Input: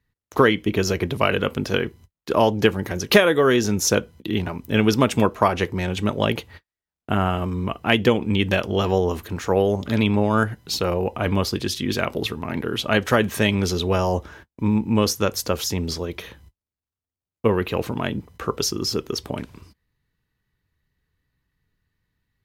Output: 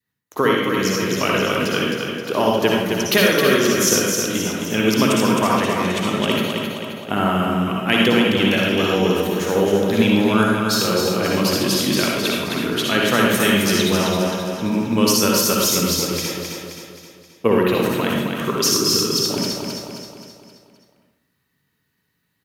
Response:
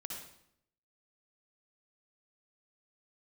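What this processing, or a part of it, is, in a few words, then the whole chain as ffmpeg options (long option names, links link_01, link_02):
far laptop microphone: -filter_complex "[0:a]highshelf=frequency=7300:gain=8,aecho=1:1:264|528|792|1056|1320|1584:0.562|0.276|0.135|0.0662|0.0324|0.0159[link_01];[1:a]atrim=start_sample=2205[link_02];[link_01][link_02]afir=irnorm=-1:irlink=0,highpass=170,dynaudnorm=framelen=320:gausssize=7:maxgain=6dB,adynamicequalizer=threshold=0.0224:dfrequency=710:dqfactor=1.4:tfrequency=710:tqfactor=1.4:attack=5:release=100:ratio=0.375:range=3:mode=cutabove:tftype=bell,volume=1.5dB"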